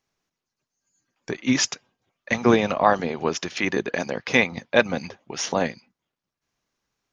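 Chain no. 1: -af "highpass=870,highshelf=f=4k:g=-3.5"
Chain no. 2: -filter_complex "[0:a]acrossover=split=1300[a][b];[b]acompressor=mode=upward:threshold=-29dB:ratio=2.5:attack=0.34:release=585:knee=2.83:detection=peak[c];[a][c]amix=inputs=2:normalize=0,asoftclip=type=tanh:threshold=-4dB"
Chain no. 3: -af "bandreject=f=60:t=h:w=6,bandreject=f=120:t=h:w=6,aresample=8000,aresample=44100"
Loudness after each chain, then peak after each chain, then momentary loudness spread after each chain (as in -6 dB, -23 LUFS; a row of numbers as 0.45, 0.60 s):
-27.5, -24.0, -23.5 LUFS; -5.5, -5.0, -2.0 dBFS; 13, 10, 12 LU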